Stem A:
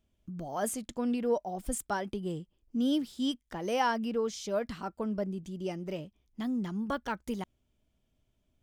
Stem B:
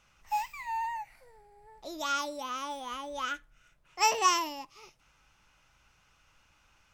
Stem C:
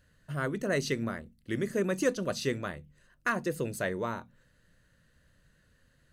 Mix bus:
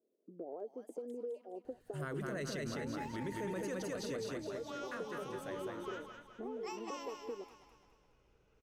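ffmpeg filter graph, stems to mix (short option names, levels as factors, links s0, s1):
-filter_complex "[0:a]highpass=f=300:w=0.5412,highpass=f=300:w=1.3066,acompressor=threshold=0.0178:ratio=6,volume=0.75,asplit=2[s0][s1];[s1]volume=0.0708[s2];[1:a]highshelf=f=7700:g=-8.5,alimiter=limit=0.0668:level=0:latency=1:release=395,adelay=2450,volume=0.708,asplit=2[s3][s4];[s4]volume=0.282[s5];[2:a]adelay=1650,volume=0.473,afade=t=out:st=3.7:d=0.69:silence=0.298538,asplit=2[s6][s7];[s7]volume=0.708[s8];[s0][s3]amix=inputs=2:normalize=0,lowpass=f=450:t=q:w=4.9,acompressor=threshold=0.00891:ratio=6,volume=1[s9];[s2][s5][s8]amix=inputs=3:normalize=0,aecho=0:1:208|416|624|832|1040|1248|1456:1|0.48|0.23|0.111|0.0531|0.0255|0.0122[s10];[s6][s9][s10]amix=inputs=3:normalize=0,alimiter=level_in=2.51:limit=0.0631:level=0:latency=1:release=25,volume=0.398"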